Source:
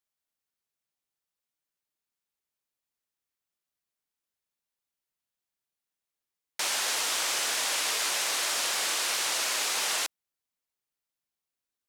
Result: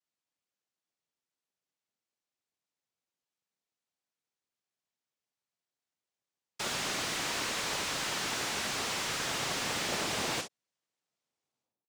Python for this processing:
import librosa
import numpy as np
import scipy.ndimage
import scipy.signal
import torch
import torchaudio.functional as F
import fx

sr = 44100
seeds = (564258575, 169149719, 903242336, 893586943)

y = fx.tape_stop_end(x, sr, length_s=2.88)
y = fx.low_shelf(y, sr, hz=410.0, db=6.5)
y = fx.rev_gated(y, sr, seeds[0], gate_ms=80, shape='flat', drr_db=7.0)
y = fx.noise_vocoder(y, sr, seeds[1], bands=2)
y = fx.slew_limit(y, sr, full_power_hz=130.0)
y = y * librosa.db_to_amplitude(-3.0)